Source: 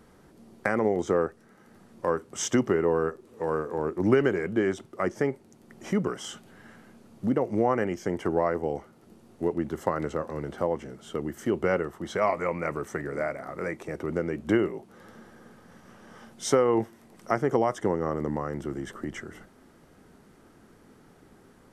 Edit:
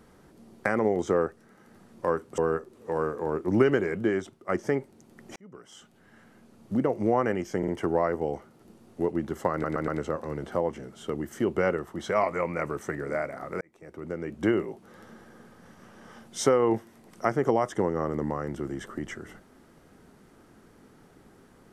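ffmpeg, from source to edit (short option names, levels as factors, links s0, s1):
-filter_complex "[0:a]asplit=10[s0][s1][s2][s3][s4][s5][s6][s7][s8][s9];[s0]atrim=end=2.382[s10];[s1]atrim=start=2.898:end=5.01,asetpts=PTS-STARTPTS,afade=t=out:st=1.652:d=0.46:silence=0.334965[s11];[s2]atrim=start=5.01:end=5.88,asetpts=PTS-STARTPTS,afade=t=in:d=0.004:c=hsin:silence=0.334965,afade=t=out:st=0.866:d=0.004:c=hsin[s12];[s3]atrim=start=5.88:end=8.152,asetpts=PTS-STARTPTS,afade=t=in:d=1.51[s13];[s4]atrim=start=8.098:end=8.152[s14];[s5]atrim=start=8.098:end=10.062[s15];[s6]atrim=start=9.938:end=10.062[s16];[s7]atrim=start=9.938:end=10.062[s17];[s8]atrim=start=9.938:end=13.67,asetpts=PTS-STARTPTS,afade=t=out:st=3.728:d=0.004:c=hsin[s18];[s9]atrim=start=13.67,asetpts=PTS-STARTPTS,afade=t=in:d=1[s19];[s11][s12][s13]concat=n=3:v=0:a=1[s20];[s10][s20]acrossfade=d=0.004:c1=hsin:c2=hsin[s21];[s21][s14]acrossfade=d=0.004:c1=hsin:c2=hsin[s22];[s22][s15]acrossfade=d=0.004:c1=hsin:c2=hsin[s23];[s23][s16]acrossfade=d=0.004:c1=hsin:c2=hsin[s24];[s24][s17]acrossfade=d=0.004:c1=hsin:c2=hsin[s25];[s18][s19]concat=n=2:v=0:a=1[s26];[s25][s26]acrossfade=d=0.004:c1=hsin:c2=hsin"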